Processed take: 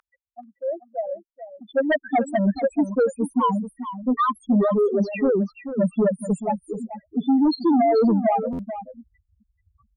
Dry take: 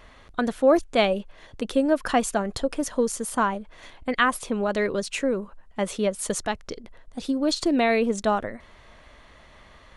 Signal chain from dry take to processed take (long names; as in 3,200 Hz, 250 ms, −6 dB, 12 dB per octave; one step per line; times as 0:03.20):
0:06.75–0:07.46: high-pass filter 84 Hz 12 dB per octave
spectral peaks only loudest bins 2
0:03.35–0:04.23: comb filter 6.9 ms, depth 31%
in parallel at 0 dB: downward compressor, threshold −34 dBFS, peak gain reduction 17 dB
on the sum: high-pass filter sweep 1,300 Hz → 160 Hz, 0:01.31–0:02.62
high-shelf EQ 2,400 Hz −7 dB
sine wavefolder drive 7 dB, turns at −9.5 dBFS
on a send: single-tap delay 434 ms −11.5 dB
on the sum: buffer that repeats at 0:08.52, samples 512, times 5
level −5 dB